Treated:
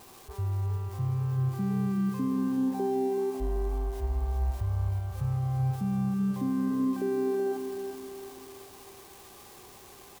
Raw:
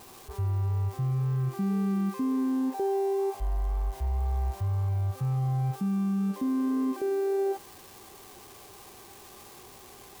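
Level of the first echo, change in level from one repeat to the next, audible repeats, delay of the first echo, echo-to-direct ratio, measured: -7.5 dB, -6.5 dB, 5, 382 ms, -6.5 dB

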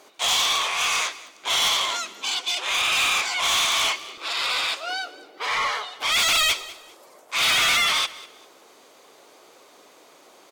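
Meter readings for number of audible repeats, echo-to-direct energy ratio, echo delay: 2, -18.5 dB, 200 ms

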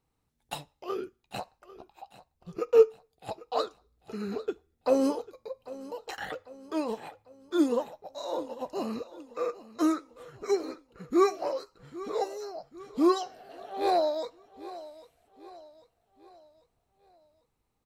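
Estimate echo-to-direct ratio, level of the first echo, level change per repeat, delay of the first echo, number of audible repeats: -16.5 dB, -17.5 dB, -6.5 dB, 796 ms, 3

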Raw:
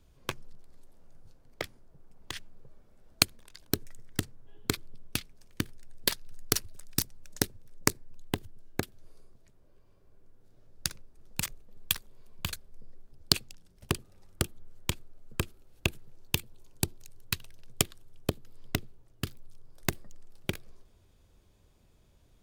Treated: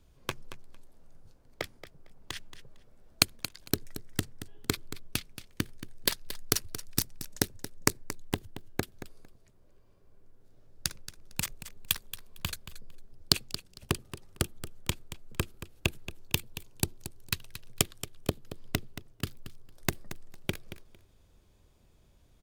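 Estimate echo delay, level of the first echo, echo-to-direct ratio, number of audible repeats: 227 ms, -13.0 dB, -13.0 dB, 2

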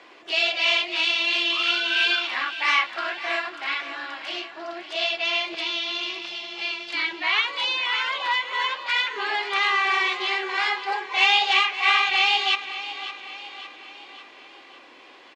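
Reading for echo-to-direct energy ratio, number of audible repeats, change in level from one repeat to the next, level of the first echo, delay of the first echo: -11.5 dB, 4, -5.5 dB, -13.0 dB, 558 ms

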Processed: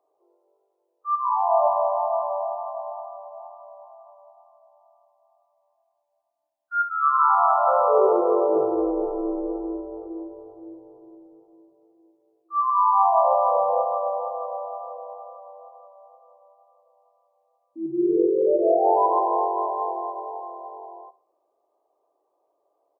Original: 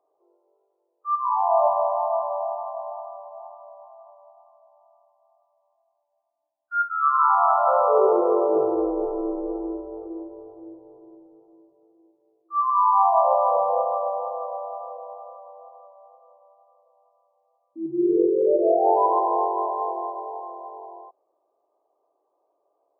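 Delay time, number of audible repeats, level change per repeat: 67 ms, 3, -8.5 dB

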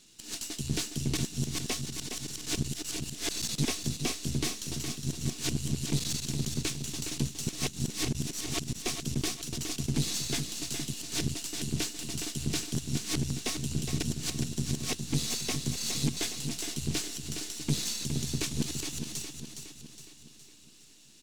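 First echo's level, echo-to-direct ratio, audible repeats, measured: -7.0 dB, -5.5 dB, 5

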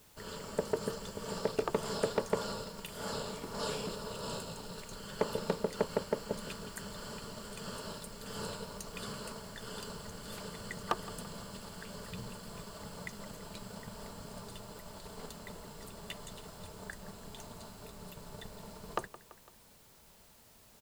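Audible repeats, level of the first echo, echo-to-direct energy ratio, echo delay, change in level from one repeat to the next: 3, -17.0 dB, -15.5 dB, 168 ms, -4.5 dB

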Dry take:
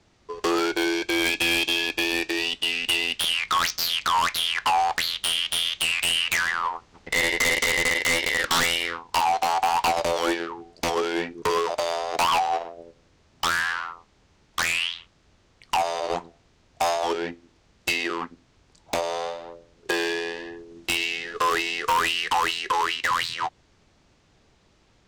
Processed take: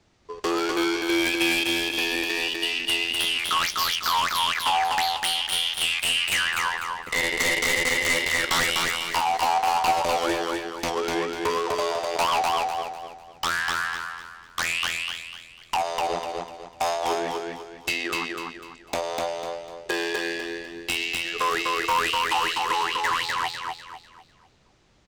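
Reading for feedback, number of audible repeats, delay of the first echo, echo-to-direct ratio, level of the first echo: 35%, 4, 249 ms, -2.5 dB, -3.0 dB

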